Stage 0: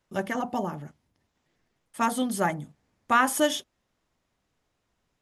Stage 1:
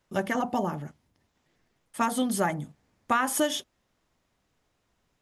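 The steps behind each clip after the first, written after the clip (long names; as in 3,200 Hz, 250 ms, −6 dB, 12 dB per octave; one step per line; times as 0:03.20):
downward compressor 4 to 1, threshold −24 dBFS, peak gain reduction 8 dB
level +2.5 dB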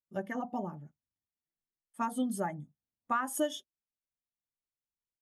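high-shelf EQ 4,800 Hz +5.5 dB
every bin expanded away from the loudest bin 1.5 to 1
level −8 dB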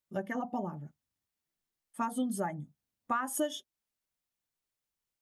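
downward compressor 1.5 to 1, threshold −46 dBFS, peak gain reduction 7.5 dB
level +6 dB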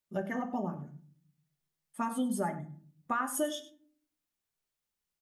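single-tap delay 100 ms −15.5 dB
on a send at −8 dB: convolution reverb RT60 0.50 s, pre-delay 5 ms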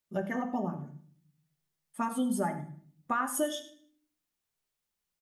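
repeating echo 76 ms, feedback 41%, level −16.5 dB
level +1.5 dB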